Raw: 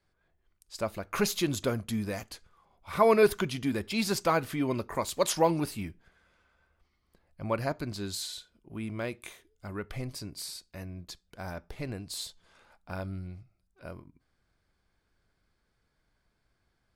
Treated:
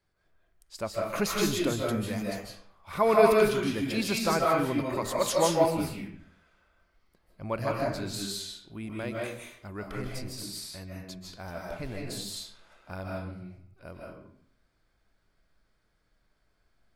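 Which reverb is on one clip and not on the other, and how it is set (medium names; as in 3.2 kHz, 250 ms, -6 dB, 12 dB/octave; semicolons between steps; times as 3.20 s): algorithmic reverb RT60 0.63 s, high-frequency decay 0.7×, pre-delay 115 ms, DRR -2.5 dB; trim -2 dB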